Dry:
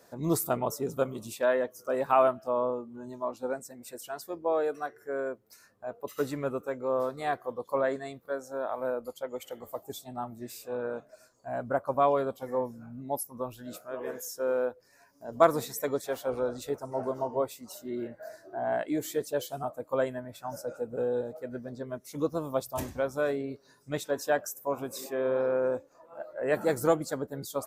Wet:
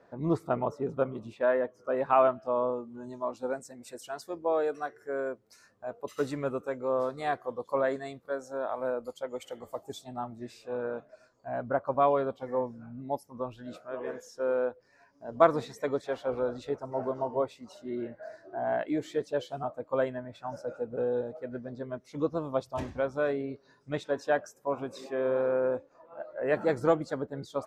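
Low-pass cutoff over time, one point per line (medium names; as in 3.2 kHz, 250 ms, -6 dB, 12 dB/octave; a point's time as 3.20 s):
1.65 s 2.1 kHz
2.52 s 4.3 kHz
2.82 s 7.8 kHz
9.84 s 7.8 kHz
10.67 s 3.7 kHz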